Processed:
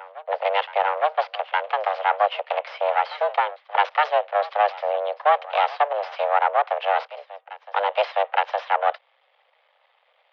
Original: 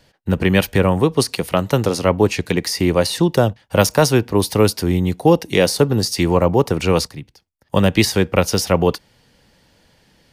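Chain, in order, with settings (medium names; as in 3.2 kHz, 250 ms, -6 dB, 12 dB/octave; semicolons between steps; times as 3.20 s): half-wave rectifier; mistuned SSB +300 Hz 240–3100 Hz; reverse echo 864 ms -18 dB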